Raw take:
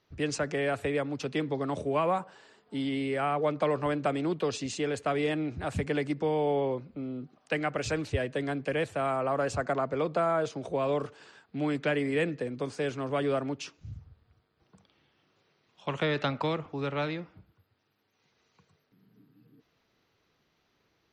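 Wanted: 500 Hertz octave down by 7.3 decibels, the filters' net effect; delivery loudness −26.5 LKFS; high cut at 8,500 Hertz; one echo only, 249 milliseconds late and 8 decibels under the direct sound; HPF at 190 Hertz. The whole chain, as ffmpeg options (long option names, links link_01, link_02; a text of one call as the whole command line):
ffmpeg -i in.wav -af "highpass=190,lowpass=8500,equalizer=frequency=500:width_type=o:gain=-9,aecho=1:1:249:0.398,volume=8dB" out.wav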